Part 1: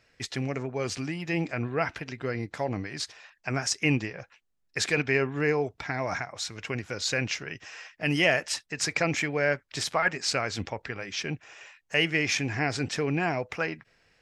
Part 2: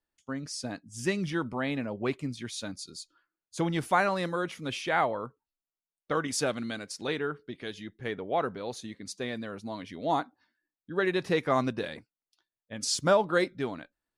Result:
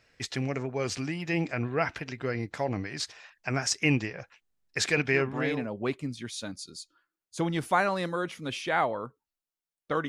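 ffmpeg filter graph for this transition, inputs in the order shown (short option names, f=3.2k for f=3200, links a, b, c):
-filter_complex "[0:a]apad=whole_dur=10.08,atrim=end=10.08,atrim=end=5.71,asetpts=PTS-STARTPTS[a];[1:a]atrim=start=1.21:end=6.28,asetpts=PTS-STARTPTS[b];[a][b]acrossfade=d=0.7:c1=qsin:c2=qsin"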